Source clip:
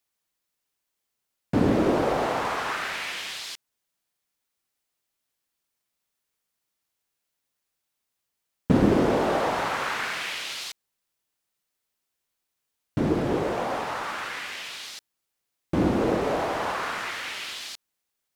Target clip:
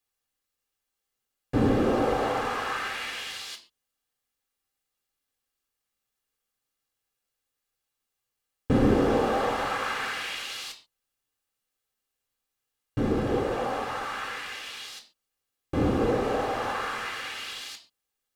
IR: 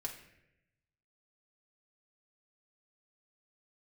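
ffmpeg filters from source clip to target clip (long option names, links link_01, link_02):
-filter_complex "[1:a]atrim=start_sample=2205,afade=type=out:start_time=0.31:duration=0.01,atrim=end_sample=14112,asetrate=79380,aresample=44100[link_01];[0:a][link_01]afir=irnorm=-1:irlink=0,volume=4dB"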